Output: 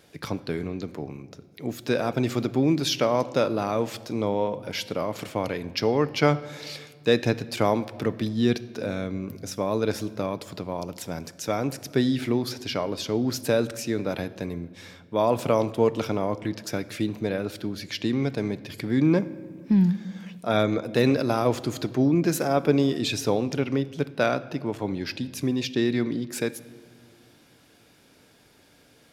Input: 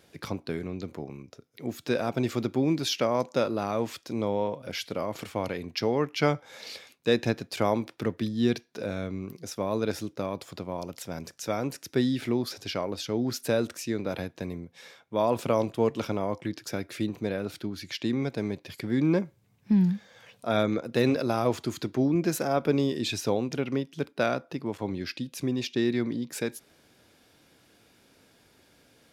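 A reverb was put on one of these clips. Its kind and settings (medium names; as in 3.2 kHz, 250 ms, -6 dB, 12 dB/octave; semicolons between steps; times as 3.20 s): simulated room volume 3000 m³, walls mixed, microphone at 0.4 m; trim +3 dB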